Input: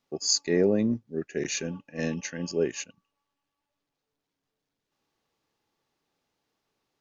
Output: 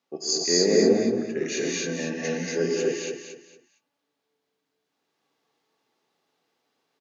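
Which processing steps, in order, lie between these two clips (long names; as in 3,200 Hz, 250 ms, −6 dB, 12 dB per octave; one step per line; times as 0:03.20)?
high-pass filter 230 Hz 12 dB per octave
high-shelf EQ 6,500 Hz −5 dB
repeating echo 229 ms, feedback 28%, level −8 dB
reverb whose tail is shaped and stops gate 300 ms rising, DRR −3.5 dB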